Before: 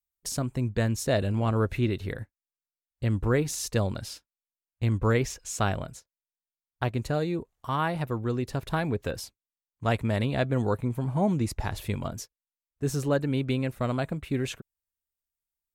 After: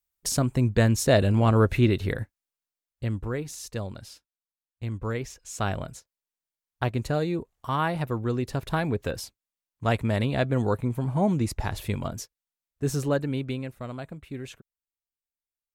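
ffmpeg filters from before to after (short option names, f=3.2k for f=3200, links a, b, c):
-af "volume=13.5dB,afade=t=out:st=2.22:d=1.09:silence=0.251189,afade=t=in:st=5.41:d=0.46:silence=0.398107,afade=t=out:st=12.97:d=0.81:silence=0.334965"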